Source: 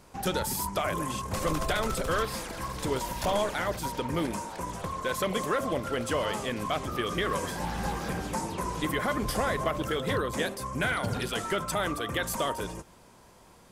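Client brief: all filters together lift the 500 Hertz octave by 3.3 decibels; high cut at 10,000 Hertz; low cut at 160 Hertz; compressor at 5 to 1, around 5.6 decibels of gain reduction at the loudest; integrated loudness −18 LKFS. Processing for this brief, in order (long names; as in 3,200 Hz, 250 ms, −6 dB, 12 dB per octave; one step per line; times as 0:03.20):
high-pass filter 160 Hz
low-pass filter 10,000 Hz
parametric band 500 Hz +4 dB
downward compressor 5 to 1, threshold −28 dBFS
level +15 dB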